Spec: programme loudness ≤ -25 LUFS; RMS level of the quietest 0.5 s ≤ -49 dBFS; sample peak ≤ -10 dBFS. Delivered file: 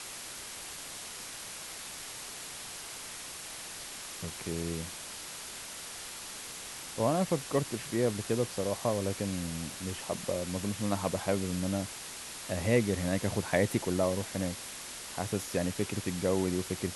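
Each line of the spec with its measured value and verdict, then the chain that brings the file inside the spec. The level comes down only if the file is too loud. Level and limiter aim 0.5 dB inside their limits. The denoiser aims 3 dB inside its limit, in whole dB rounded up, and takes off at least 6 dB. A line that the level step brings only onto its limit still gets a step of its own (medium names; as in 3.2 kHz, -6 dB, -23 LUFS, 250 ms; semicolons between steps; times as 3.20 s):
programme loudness -34.0 LUFS: pass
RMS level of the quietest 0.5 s -43 dBFS: fail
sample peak -12.0 dBFS: pass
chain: noise reduction 9 dB, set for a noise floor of -43 dBFS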